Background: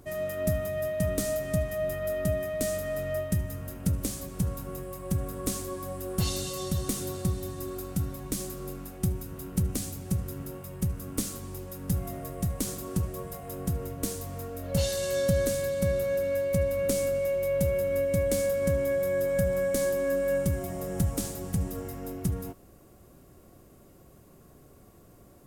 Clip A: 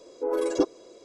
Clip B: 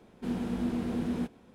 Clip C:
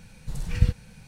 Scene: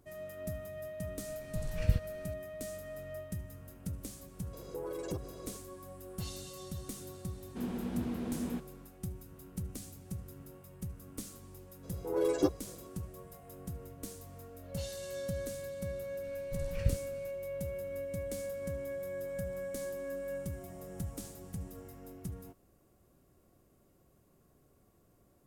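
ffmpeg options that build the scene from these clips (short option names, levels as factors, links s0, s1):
-filter_complex "[3:a]asplit=2[s0][s1];[1:a]asplit=2[s2][s3];[0:a]volume=0.237[s4];[s2]acompressor=threshold=0.0158:ratio=6:attack=3.2:release=140:knee=1:detection=peak[s5];[s3]asplit=2[s6][s7];[s7]adelay=11.6,afreqshift=2[s8];[s6][s8]amix=inputs=2:normalize=1[s9];[s0]atrim=end=1.07,asetpts=PTS-STARTPTS,volume=0.422,afade=t=in:d=0.004:c=hsin,afade=t=out:st=1.066:d=0.004:c=hsin,adelay=1270[s10];[s5]atrim=end=1.04,asetpts=PTS-STARTPTS,volume=0.841,afade=t=in:d=0.004:c=hsin,afade=t=out:st=1.036:d=0.004:c=hsin,adelay=199773S[s11];[2:a]atrim=end=1.54,asetpts=PTS-STARTPTS,volume=0.562,afade=t=in:d=0.004:c=hsin,afade=t=out:st=1.536:d=0.004:c=hsin,adelay=7330[s12];[s9]atrim=end=1.04,asetpts=PTS-STARTPTS,volume=0.75,afade=t=in:d=0.004:c=hsin,afade=t=out:st=1.036:d=0.004:c=hsin,adelay=11830[s13];[s1]atrim=end=1.07,asetpts=PTS-STARTPTS,volume=0.316,afade=t=in:d=0.004:c=hsin,afade=t=out:st=1.066:d=0.004:c=hsin,adelay=16240[s14];[s4][s10][s11][s12][s13][s14]amix=inputs=6:normalize=0"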